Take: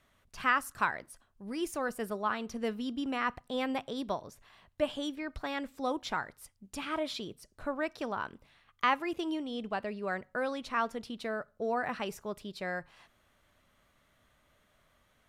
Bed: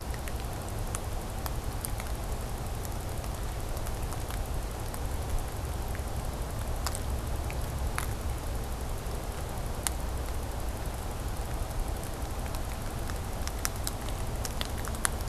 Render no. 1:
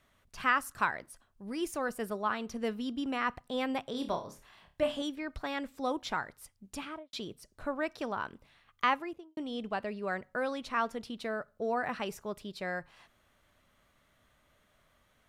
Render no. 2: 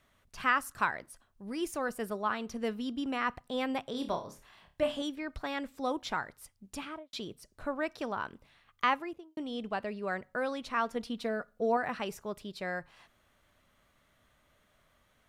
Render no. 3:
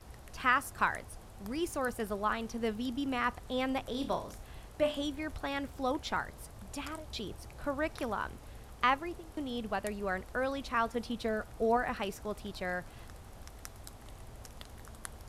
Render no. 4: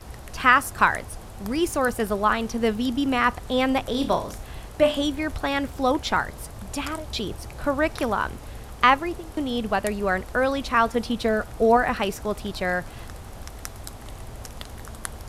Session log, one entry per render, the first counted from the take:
3.91–5.02 flutter echo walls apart 4.9 m, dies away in 0.29 s; 6.73–7.13 studio fade out; 8.85–9.37 studio fade out
10.95–11.77 comb 4.2 ms, depth 64%
add bed -15.5 dB
gain +11 dB

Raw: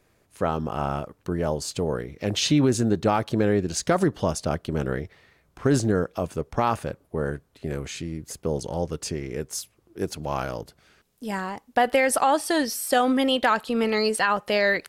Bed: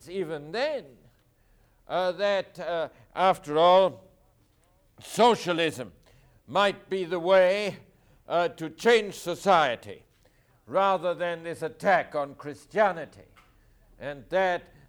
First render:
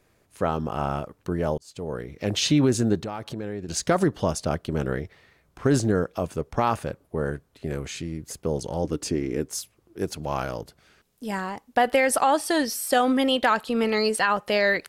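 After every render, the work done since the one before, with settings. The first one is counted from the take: 1.58–2.15 fade in; 2.98–3.69 compressor 3:1, threshold -32 dBFS; 8.84–9.5 bell 290 Hz +11 dB 0.6 oct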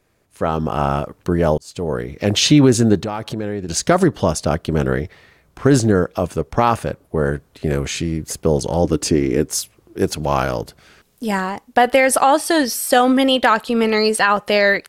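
AGC gain up to 11 dB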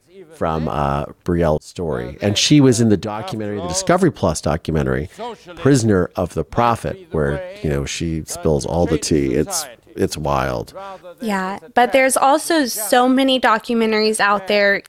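add bed -9.5 dB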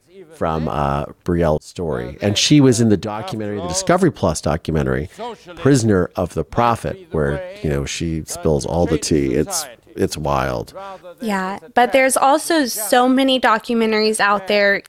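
nothing audible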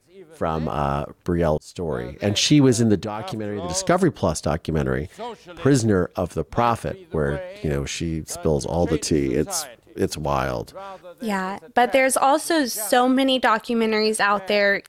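gain -4 dB

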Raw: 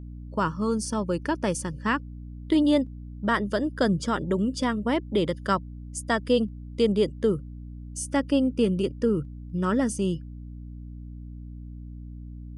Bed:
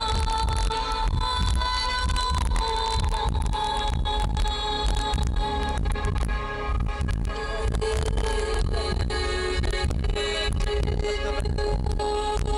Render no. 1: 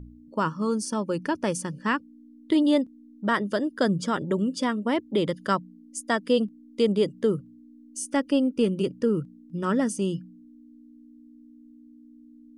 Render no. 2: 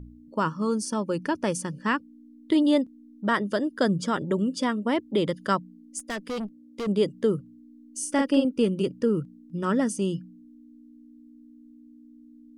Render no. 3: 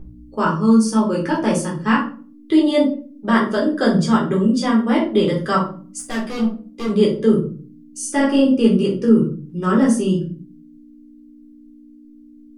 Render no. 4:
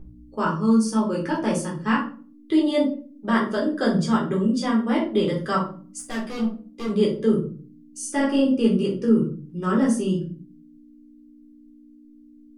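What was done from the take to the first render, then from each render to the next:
de-hum 60 Hz, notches 3
5.99–6.87 tube stage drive 28 dB, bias 0.35; 7.98–8.45 doubler 44 ms -3 dB
shoebox room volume 300 m³, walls furnished, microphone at 3.8 m
gain -5 dB

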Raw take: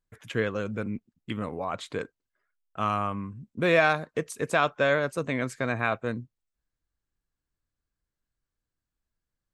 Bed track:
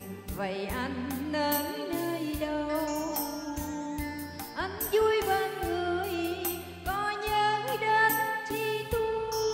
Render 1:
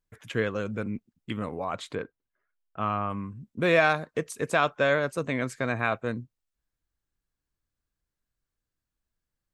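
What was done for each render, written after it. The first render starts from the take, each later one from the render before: 1.95–3.1 air absorption 280 m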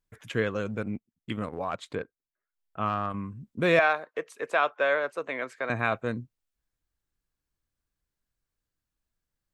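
0.68–3.14 transient shaper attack 0 dB, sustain -11 dB; 3.79–5.7 three-band isolator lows -24 dB, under 370 Hz, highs -13 dB, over 3400 Hz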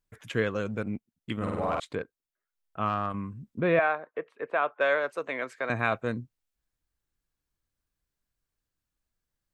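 1.36–1.8 flutter echo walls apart 8.5 m, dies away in 1.4 s; 3.6–4.81 air absorption 480 m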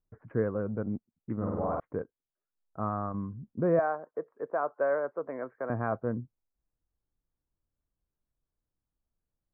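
Bessel low-pass 860 Hz, order 8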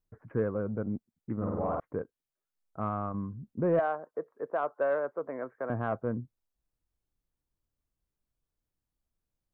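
soft clip -16.5 dBFS, distortion -24 dB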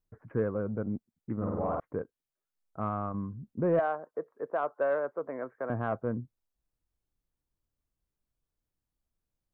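nothing audible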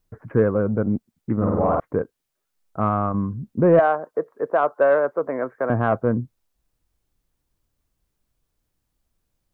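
gain +11.5 dB

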